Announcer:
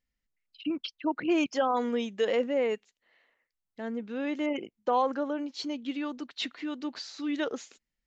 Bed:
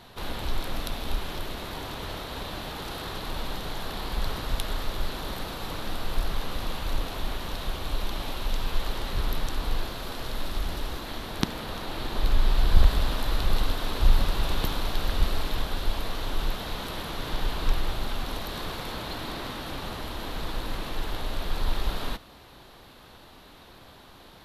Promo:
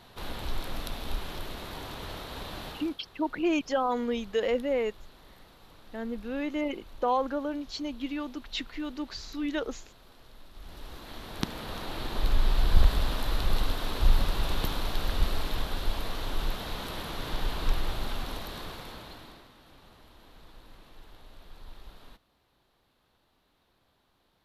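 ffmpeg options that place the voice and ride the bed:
ffmpeg -i stem1.wav -i stem2.wav -filter_complex "[0:a]adelay=2150,volume=-0.5dB[link_01];[1:a]volume=14dB,afade=type=out:start_time=2.67:duration=0.29:silence=0.149624,afade=type=in:start_time=10.53:duration=1.25:silence=0.125893,afade=type=out:start_time=18.12:duration=1.36:silence=0.125893[link_02];[link_01][link_02]amix=inputs=2:normalize=0" out.wav

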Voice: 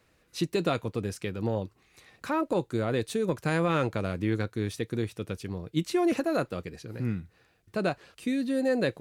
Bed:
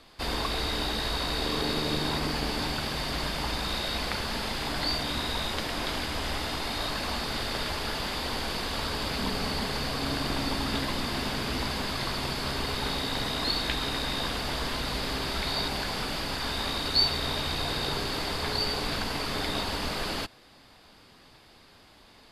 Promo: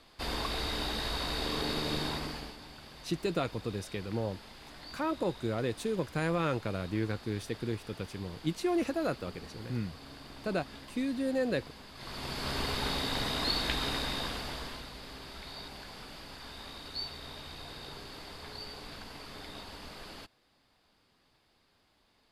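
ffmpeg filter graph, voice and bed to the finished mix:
ffmpeg -i stem1.wav -i stem2.wav -filter_complex "[0:a]adelay=2700,volume=-4.5dB[link_01];[1:a]volume=12dB,afade=type=out:start_time=2.01:duration=0.56:silence=0.188365,afade=type=in:start_time=11.94:duration=0.65:silence=0.149624,afade=type=out:start_time=13.9:duration=1.01:silence=0.237137[link_02];[link_01][link_02]amix=inputs=2:normalize=0" out.wav

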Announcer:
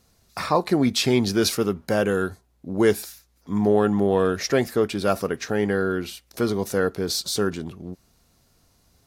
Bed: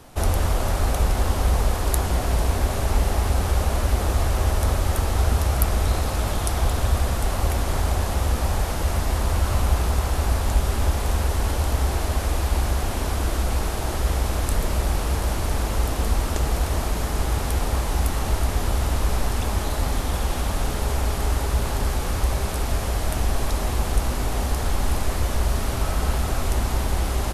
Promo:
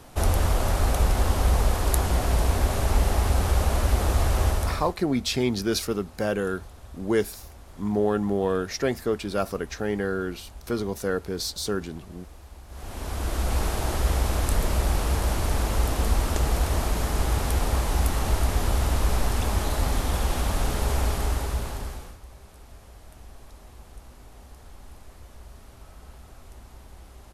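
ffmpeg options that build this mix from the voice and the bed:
ffmpeg -i stem1.wav -i stem2.wav -filter_complex "[0:a]adelay=4300,volume=-4.5dB[link_01];[1:a]volume=21.5dB,afade=type=out:start_time=4.45:duration=0.5:silence=0.0749894,afade=type=in:start_time=12.68:duration=0.94:silence=0.0749894,afade=type=out:start_time=21.03:duration=1.15:silence=0.0749894[link_02];[link_01][link_02]amix=inputs=2:normalize=0" out.wav

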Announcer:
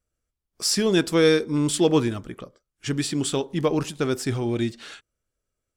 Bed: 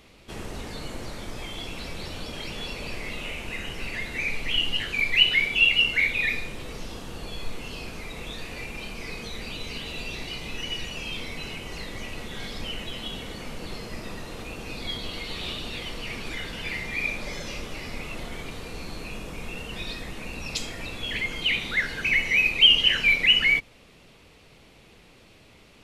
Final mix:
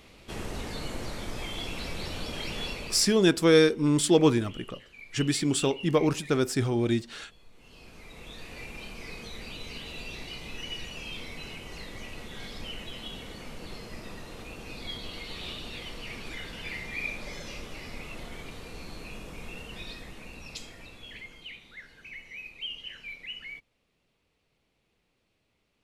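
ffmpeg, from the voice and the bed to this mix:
ffmpeg -i stem1.wav -i stem2.wav -filter_complex "[0:a]adelay=2300,volume=-1dB[link_01];[1:a]volume=17.5dB,afade=type=out:start_time=2.65:duration=0.52:silence=0.0707946,afade=type=in:start_time=7.52:duration=1.14:silence=0.133352,afade=type=out:start_time=19.5:duration=2.1:silence=0.158489[link_02];[link_01][link_02]amix=inputs=2:normalize=0" out.wav

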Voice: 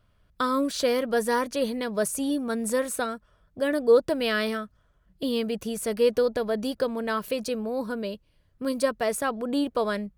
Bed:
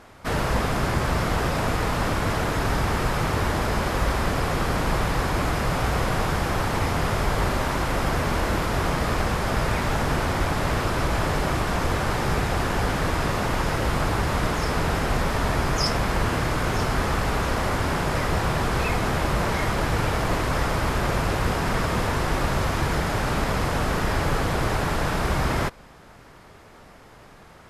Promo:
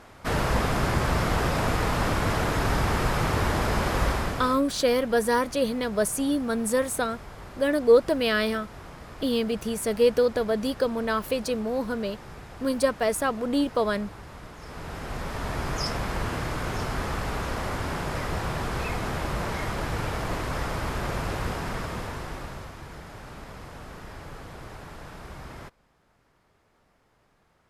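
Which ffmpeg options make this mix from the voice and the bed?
ffmpeg -i stem1.wav -i stem2.wav -filter_complex "[0:a]adelay=4000,volume=1.5dB[link_01];[1:a]volume=12.5dB,afade=type=out:start_time=4.05:duration=0.56:silence=0.11885,afade=type=in:start_time=14.57:duration=1.16:silence=0.211349,afade=type=out:start_time=21.41:duration=1.34:silence=0.251189[link_02];[link_01][link_02]amix=inputs=2:normalize=0" out.wav

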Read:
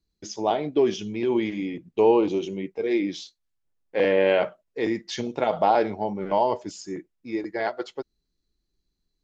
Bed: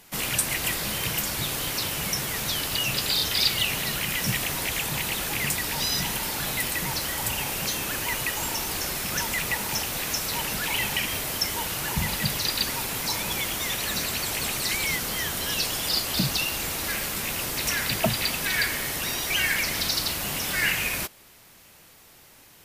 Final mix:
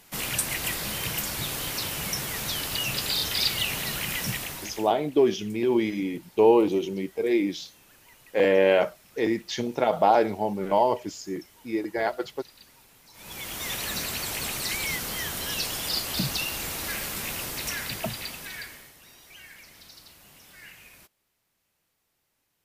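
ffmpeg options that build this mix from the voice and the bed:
ffmpeg -i stem1.wav -i stem2.wav -filter_complex "[0:a]adelay=4400,volume=0.5dB[link_01];[1:a]volume=21dB,afade=type=out:start_time=4.16:duration=0.77:silence=0.0630957,afade=type=in:start_time=13.13:duration=0.6:silence=0.0668344,afade=type=out:start_time=17.28:duration=1.66:silence=0.0944061[link_02];[link_01][link_02]amix=inputs=2:normalize=0" out.wav

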